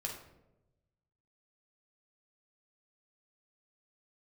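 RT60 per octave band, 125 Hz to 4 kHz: 1.6 s, 1.2 s, 1.1 s, 0.80 s, 0.65 s, 0.50 s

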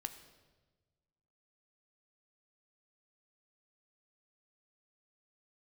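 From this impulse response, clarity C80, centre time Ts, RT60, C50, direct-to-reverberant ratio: 12.0 dB, 14 ms, 1.3 s, 11.0 dB, 8.0 dB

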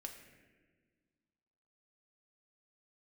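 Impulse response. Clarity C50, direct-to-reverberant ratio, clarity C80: 6.5 dB, 2.5 dB, 8.0 dB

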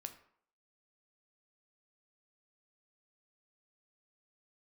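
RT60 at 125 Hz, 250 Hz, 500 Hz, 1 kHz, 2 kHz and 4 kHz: 0.45 s, 0.55 s, 0.60 s, 0.65 s, 0.50 s, 0.40 s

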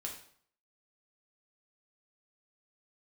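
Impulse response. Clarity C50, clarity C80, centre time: 6.5 dB, 10.5 dB, 25 ms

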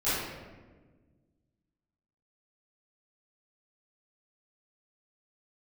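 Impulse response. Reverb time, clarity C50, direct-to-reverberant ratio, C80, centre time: 1.4 s, -3.0 dB, -16.5 dB, 1.0 dB, 99 ms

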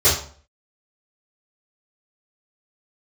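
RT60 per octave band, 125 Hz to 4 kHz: 0.50 s, 0.50 s, 0.50 s, 0.45 s, 0.40 s, 0.35 s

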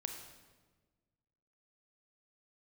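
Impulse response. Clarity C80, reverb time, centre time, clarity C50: 7.5 dB, 1.4 s, 31 ms, 5.5 dB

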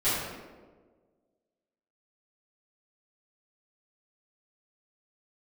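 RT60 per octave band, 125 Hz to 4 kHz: 1.5 s, 1.7 s, 1.7 s, 1.2 s, 0.95 s, 0.75 s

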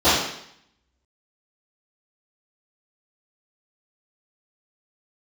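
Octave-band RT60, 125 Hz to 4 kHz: 0.75 s, 0.75 s, 0.70 s, 0.70 s, 0.75 s, 0.70 s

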